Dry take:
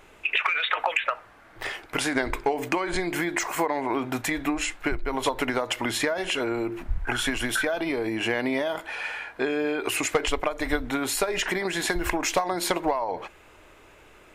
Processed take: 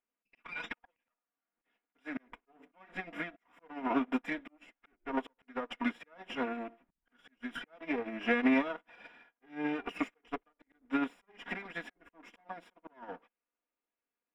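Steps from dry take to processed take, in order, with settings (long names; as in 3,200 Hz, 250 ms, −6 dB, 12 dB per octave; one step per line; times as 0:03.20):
lower of the sound and its delayed copy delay 4.2 ms
low shelf with overshoot 160 Hz −12 dB, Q 1.5
notch filter 440 Hz, Q 12
volume swells 266 ms
Savitzky-Golay smoothing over 25 samples
expander for the loud parts 2.5 to 1, over −50 dBFS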